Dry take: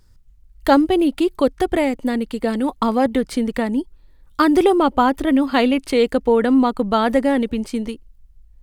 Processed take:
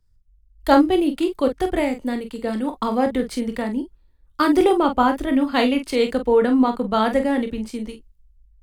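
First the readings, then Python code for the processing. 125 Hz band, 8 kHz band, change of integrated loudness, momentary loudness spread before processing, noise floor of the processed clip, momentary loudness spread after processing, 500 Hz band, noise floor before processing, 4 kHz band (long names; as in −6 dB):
can't be measured, −2.0 dB, −2.0 dB, 10 LU, −57 dBFS, 12 LU, −2.0 dB, −51 dBFS, −1.5 dB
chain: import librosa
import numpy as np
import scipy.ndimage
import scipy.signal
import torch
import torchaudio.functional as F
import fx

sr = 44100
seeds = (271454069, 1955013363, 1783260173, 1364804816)

y = fx.room_early_taps(x, sr, ms=(24, 46), db=(-10.5, -8.5))
y = fx.band_widen(y, sr, depth_pct=40)
y = y * 10.0 ** (-3.0 / 20.0)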